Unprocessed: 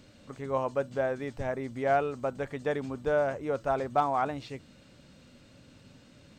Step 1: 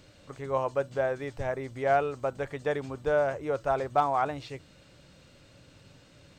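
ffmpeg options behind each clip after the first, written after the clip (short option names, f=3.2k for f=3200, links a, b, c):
-af "equalizer=f=230:t=o:w=0.38:g=-12,volume=1.5dB"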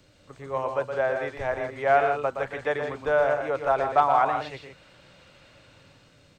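-filter_complex "[0:a]acrossover=split=220|560|3700[a][b][c][d];[c]dynaudnorm=f=130:g=11:m=9dB[e];[a][b][e][d]amix=inputs=4:normalize=0,aecho=1:1:119.5|160.3:0.447|0.355,volume=-3dB"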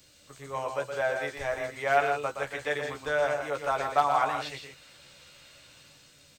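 -filter_complex "[0:a]asplit=2[a][b];[b]adelay=14,volume=-5dB[c];[a][c]amix=inputs=2:normalize=0,crystalizer=i=5.5:c=0,volume=-7dB"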